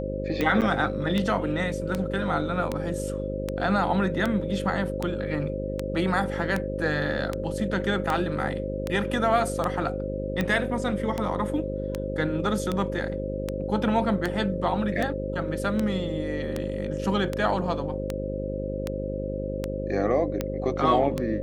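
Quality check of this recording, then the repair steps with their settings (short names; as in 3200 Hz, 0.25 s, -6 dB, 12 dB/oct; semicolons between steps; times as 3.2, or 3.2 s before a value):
buzz 50 Hz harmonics 12 -32 dBFS
tick 78 rpm -13 dBFS
tone 530 Hz -32 dBFS
0.61–0.62 gap 8.1 ms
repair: de-click; de-hum 50 Hz, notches 12; notch 530 Hz, Q 30; interpolate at 0.61, 8.1 ms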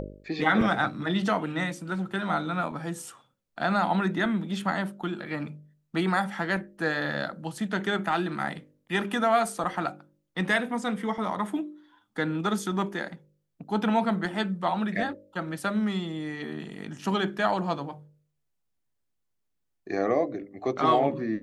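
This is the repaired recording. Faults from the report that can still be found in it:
none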